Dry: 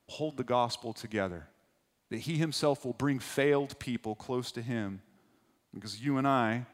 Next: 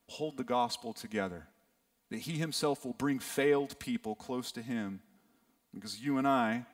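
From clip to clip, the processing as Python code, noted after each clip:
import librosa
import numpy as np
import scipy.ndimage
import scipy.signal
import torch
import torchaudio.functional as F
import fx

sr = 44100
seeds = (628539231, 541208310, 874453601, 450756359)

y = fx.high_shelf(x, sr, hz=11000.0, db=10.5)
y = y + 0.59 * np.pad(y, (int(4.3 * sr / 1000.0), 0))[:len(y)]
y = F.gain(torch.from_numpy(y), -3.5).numpy()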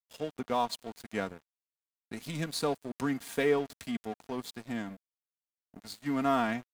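y = np.sign(x) * np.maximum(np.abs(x) - 10.0 ** (-45.5 / 20.0), 0.0)
y = F.gain(torch.from_numpy(y), 2.0).numpy()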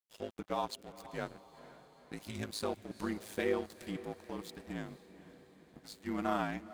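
y = x * np.sin(2.0 * np.pi * 53.0 * np.arange(len(x)) / sr)
y = fx.echo_diffused(y, sr, ms=484, feedback_pct=57, wet_db=-15.5)
y = F.gain(torch.from_numpy(y), -3.0).numpy()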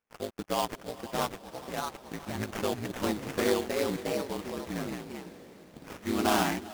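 y = fx.sample_hold(x, sr, seeds[0], rate_hz=4000.0, jitter_pct=20)
y = fx.echo_pitch(y, sr, ms=685, semitones=2, count=2, db_per_echo=-3.0)
y = F.gain(torch.from_numpy(y), 5.5).numpy()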